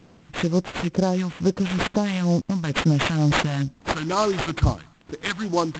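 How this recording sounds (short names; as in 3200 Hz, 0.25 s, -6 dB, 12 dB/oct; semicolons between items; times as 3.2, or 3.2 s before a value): a quantiser's noise floor 12-bit, dither triangular; phasing stages 2, 2.2 Hz, lowest notch 400–3100 Hz; aliases and images of a low sample rate 5600 Hz, jitter 20%; G.722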